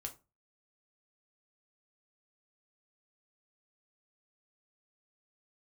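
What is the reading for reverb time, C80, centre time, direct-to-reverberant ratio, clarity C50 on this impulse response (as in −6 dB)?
0.30 s, 22.0 dB, 9 ms, 3.0 dB, 15.5 dB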